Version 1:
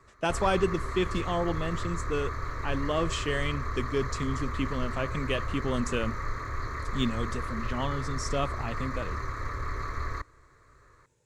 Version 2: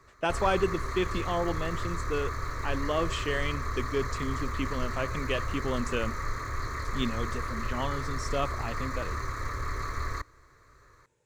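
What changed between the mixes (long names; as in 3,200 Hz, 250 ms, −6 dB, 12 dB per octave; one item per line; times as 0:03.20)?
speech: add bass and treble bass −5 dB, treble −13 dB
master: add high-shelf EQ 5,500 Hz +11.5 dB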